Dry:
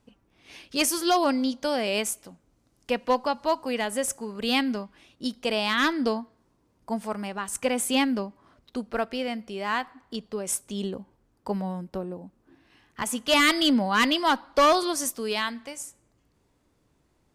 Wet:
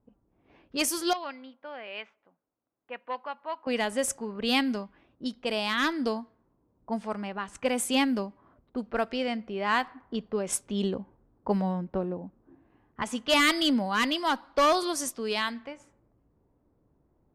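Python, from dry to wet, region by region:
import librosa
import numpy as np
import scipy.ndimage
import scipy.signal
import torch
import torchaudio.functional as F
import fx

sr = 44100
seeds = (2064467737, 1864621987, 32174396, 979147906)

y = fx.chain(x, sr, fx.bandpass_q(hz=2800.0, q=0.78),
    fx.air_absorb(metres=260.0), at=(1.13, 3.67))
y = fx.env_lowpass(y, sr, base_hz=830.0, full_db=-22.5)
y = fx.rider(y, sr, range_db=4, speed_s=2.0)
y = y * 10.0 ** (-1.5 / 20.0)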